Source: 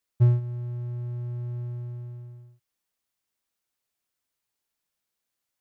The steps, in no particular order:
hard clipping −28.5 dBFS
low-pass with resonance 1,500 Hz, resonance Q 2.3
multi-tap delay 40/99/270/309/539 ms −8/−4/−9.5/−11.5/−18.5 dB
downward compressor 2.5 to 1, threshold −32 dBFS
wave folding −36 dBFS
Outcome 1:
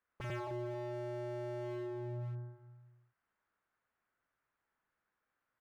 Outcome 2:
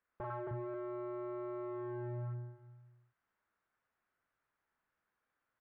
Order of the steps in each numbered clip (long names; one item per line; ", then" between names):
low-pass with resonance, then hard clipping, then multi-tap delay, then wave folding, then downward compressor
downward compressor, then multi-tap delay, then hard clipping, then wave folding, then low-pass with resonance